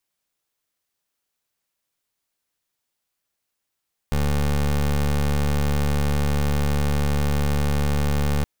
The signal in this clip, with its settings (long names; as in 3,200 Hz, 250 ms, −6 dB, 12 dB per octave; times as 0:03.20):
pulse wave 72.4 Hz, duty 22% −20.5 dBFS 4.32 s